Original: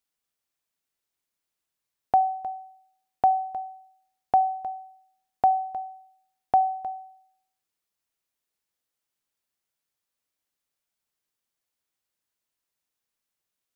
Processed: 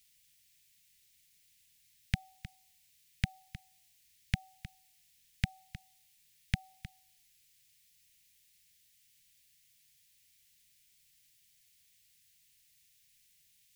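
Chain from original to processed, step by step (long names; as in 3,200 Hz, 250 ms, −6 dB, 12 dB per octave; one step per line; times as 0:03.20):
inverse Chebyshev band-stop filter 290–1,200 Hz, stop band 40 dB
level +17.5 dB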